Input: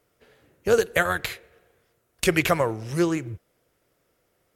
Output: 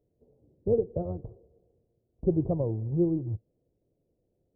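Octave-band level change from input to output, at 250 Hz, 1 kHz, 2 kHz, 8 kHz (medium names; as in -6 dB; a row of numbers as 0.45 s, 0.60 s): -2.5 dB, -18.5 dB, under -40 dB, under -40 dB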